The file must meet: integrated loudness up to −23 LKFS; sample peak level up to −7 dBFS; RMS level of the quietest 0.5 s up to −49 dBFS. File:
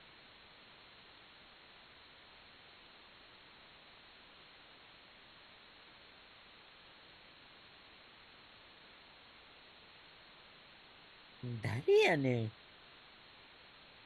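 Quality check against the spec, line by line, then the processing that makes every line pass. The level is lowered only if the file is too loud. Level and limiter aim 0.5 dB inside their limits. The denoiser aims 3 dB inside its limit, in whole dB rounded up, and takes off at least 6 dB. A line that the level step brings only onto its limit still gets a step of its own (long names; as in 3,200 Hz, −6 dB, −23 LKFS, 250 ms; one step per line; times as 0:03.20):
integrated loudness −33.5 LKFS: in spec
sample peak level −19.5 dBFS: in spec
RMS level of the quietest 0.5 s −60 dBFS: in spec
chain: no processing needed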